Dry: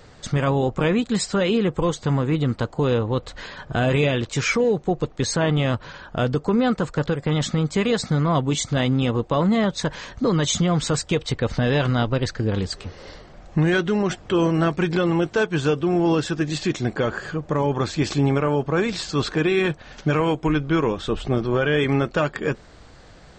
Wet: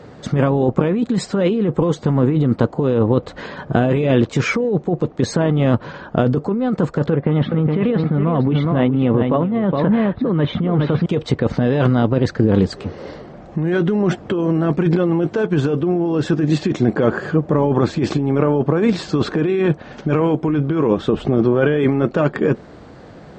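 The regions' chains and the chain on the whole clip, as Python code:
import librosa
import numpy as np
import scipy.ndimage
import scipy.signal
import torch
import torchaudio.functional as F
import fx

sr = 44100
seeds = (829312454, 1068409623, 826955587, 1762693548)

y = fx.chain(x, sr, fx.cheby2_lowpass(hz=7500.0, order=4, stop_db=50),
    fx.echo_single(ms=415, db=-8.5), at=(7.1, 11.06))
y = scipy.signal.sosfilt(scipy.signal.butter(2, 220.0, 'highpass', fs=sr, output='sos'), y)
y = fx.tilt_eq(y, sr, slope=-4.0)
y = fx.over_compress(y, sr, threshold_db=-19.0, ratio=-1.0)
y = F.gain(torch.from_numpy(y), 3.5).numpy()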